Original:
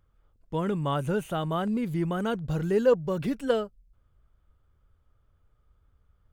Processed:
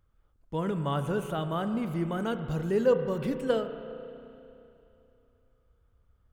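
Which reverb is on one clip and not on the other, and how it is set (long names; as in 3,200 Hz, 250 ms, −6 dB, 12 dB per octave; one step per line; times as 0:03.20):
spring reverb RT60 2.9 s, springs 31/35 ms, chirp 70 ms, DRR 8 dB
level −2.5 dB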